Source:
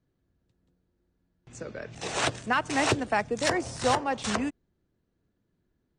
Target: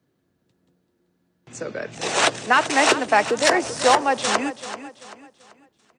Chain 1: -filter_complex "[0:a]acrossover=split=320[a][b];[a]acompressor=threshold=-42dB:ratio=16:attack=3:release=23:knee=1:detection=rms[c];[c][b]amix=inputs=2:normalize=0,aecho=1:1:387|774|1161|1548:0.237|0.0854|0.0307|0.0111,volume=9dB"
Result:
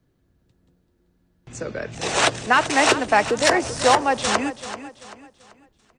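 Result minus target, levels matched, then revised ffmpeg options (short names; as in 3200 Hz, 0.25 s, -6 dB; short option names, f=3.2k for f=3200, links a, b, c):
125 Hz band +6.0 dB
-filter_complex "[0:a]acrossover=split=320[a][b];[a]acompressor=threshold=-42dB:ratio=16:attack=3:release=23:knee=1:detection=rms,highpass=160[c];[c][b]amix=inputs=2:normalize=0,aecho=1:1:387|774|1161|1548:0.237|0.0854|0.0307|0.0111,volume=9dB"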